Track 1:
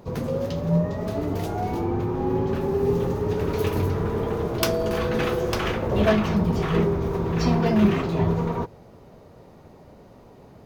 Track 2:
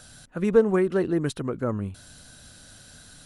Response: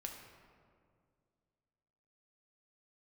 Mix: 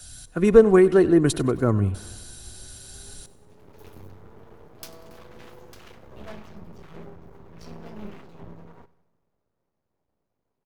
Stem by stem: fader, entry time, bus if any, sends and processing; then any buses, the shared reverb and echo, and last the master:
-16.5 dB, 0.20 s, no send, echo send -19 dB, half-wave rectifier; auto duck -8 dB, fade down 0.30 s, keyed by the second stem
+0.5 dB, 0.00 s, no send, echo send -19.5 dB, low shelf 150 Hz +9.5 dB; comb 2.8 ms, depth 35%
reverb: off
echo: feedback echo 96 ms, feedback 59%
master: high shelf 4400 Hz +7.5 dB; three-band expander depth 40%

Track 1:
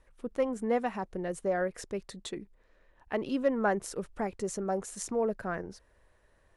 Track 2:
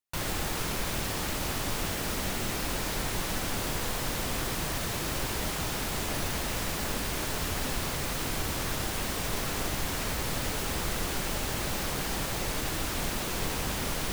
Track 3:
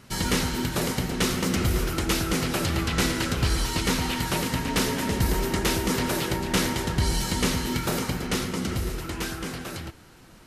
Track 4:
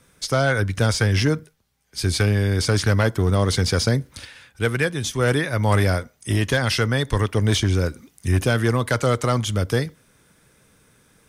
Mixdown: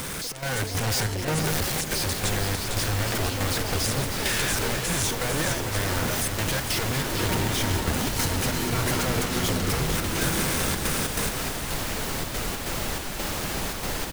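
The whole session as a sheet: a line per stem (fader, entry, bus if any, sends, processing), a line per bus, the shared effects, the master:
-2.0 dB, 0.00 s, no bus, no send, echo send -4.5 dB, fixed phaser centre 490 Hz, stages 4; negative-ratio compressor -37 dBFS; spectral compressor 2:1
-6.0 dB, 1.45 s, bus A, no send, echo send -3.5 dB, dry
-9.5 dB, 0.95 s, no bus, no send, no echo send, negative-ratio compressor -29 dBFS, ratio -1; auto duck -13 dB, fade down 1.75 s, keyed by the first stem
-8.0 dB, 0.00 s, bus A, no send, echo send -14.5 dB, infinite clipping
bus A: 0.0 dB, step gate "xxx.xx.xxx..xx" 141 bpm -12 dB; compressor, threshold -34 dBFS, peak gain reduction 7.5 dB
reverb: off
echo: echo 0.453 s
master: notches 60/120 Hz; AGC gain up to 8 dB

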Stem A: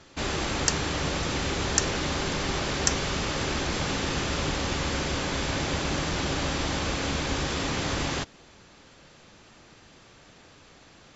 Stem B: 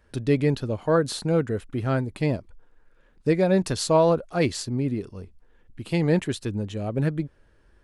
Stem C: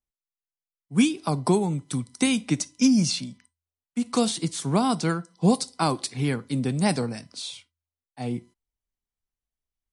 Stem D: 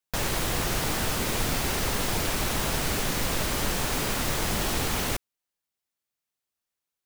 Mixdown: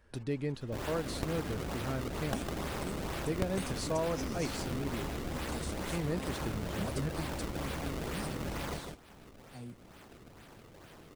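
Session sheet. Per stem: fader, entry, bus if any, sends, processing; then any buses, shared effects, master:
-1.0 dB, 0.55 s, no send, echo send -7 dB, decimation with a swept rate 31×, swing 160% 2.2 Hz
-3.0 dB, 0.00 s, no send, no echo send, dry
-16.0 dB, 1.35 s, no send, no echo send, tone controls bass +6 dB, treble +10 dB
-15.5 dB, 0.00 s, no send, echo send -4.5 dB, spectral gate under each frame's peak -20 dB strong; auto duck -9 dB, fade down 0.35 s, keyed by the second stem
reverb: off
echo: echo 0.155 s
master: compressor 1.5:1, threshold -50 dBFS, peak gain reduction 13 dB

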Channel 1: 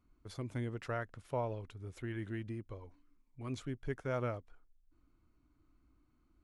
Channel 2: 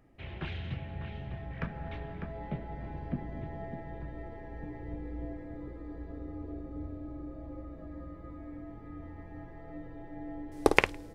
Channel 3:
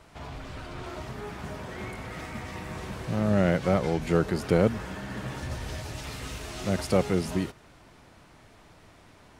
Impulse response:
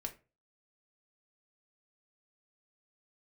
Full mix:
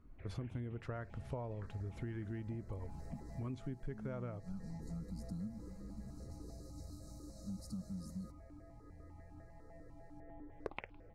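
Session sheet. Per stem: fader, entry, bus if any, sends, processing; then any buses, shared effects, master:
+2.5 dB, 0.00 s, send -11 dB, low shelf 240 Hz +8 dB
-7.5 dB, 0.00 s, no send, LPF 4600 Hz 12 dB/oct; step phaser 10 Hz 720–1900 Hz
-18.5 dB, 0.80 s, no send, FFT band-reject 1400–3800 Hz; EQ curve 130 Hz 0 dB, 220 Hz +9 dB, 330 Hz -30 dB, 7100 Hz +10 dB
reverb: on, RT60 0.30 s, pre-delay 4 ms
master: high shelf 3300 Hz -10 dB; compressor 12:1, threshold -39 dBFS, peak gain reduction 15.5 dB

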